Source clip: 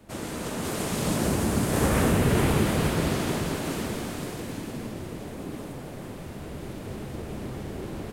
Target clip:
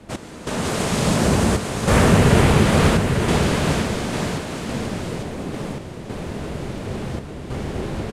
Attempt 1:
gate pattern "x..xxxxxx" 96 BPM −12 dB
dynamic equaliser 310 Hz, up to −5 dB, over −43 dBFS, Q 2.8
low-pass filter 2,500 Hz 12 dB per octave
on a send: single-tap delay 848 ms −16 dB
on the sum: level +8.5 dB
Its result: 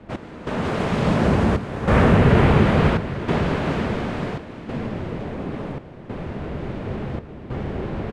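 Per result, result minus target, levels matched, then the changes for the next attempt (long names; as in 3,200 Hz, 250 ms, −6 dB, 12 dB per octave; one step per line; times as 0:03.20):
8,000 Hz band −17.5 dB; echo-to-direct −10 dB
change: low-pass filter 8,200 Hz 12 dB per octave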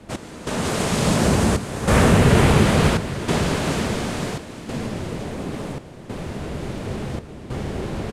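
echo-to-direct −10 dB
change: single-tap delay 848 ms −6 dB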